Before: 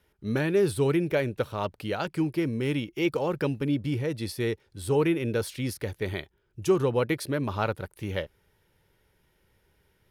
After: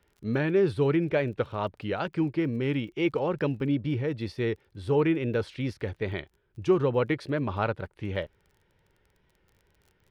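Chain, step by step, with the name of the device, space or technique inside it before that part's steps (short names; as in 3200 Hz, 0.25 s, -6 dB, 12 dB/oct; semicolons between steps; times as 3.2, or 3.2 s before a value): lo-fi chain (LPF 3300 Hz 12 dB/oct; wow and flutter; crackle 26/s -48 dBFS)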